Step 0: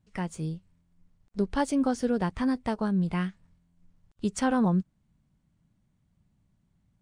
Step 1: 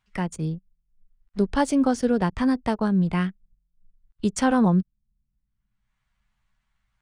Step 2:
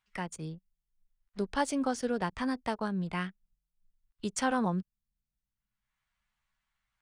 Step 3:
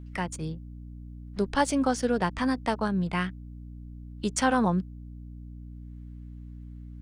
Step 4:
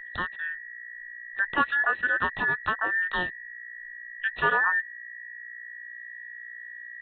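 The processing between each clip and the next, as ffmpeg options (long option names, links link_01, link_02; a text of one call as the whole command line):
ffmpeg -i in.wav -filter_complex "[0:a]anlmdn=0.0251,acrossover=split=340|1300[link_01][link_02][link_03];[link_03]acompressor=mode=upward:threshold=-51dB:ratio=2.5[link_04];[link_01][link_02][link_04]amix=inputs=3:normalize=0,volume=5dB" out.wav
ffmpeg -i in.wav -af "lowshelf=frequency=430:gain=-10,volume=-4dB" out.wav
ffmpeg -i in.wav -af "aeval=exprs='val(0)+0.00501*(sin(2*PI*60*n/s)+sin(2*PI*2*60*n/s)/2+sin(2*PI*3*60*n/s)/3+sin(2*PI*4*60*n/s)/4+sin(2*PI*5*60*n/s)/5)':channel_layout=same,volume=5.5dB" out.wav
ffmpeg -i in.wav -af "afftfilt=real='real(if(between(b,1,1012),(2*floor((b-1)/92)+1)*92-b,b),0)':imag='imag(if(between(b,1,1012),(2*floor((b-1)/92)+1)*92-b,b),0)*if(between(b,1,1012),-1,1)':win_size=2048:overlap=0.75,aresample=8000,aresample=44100" out.wav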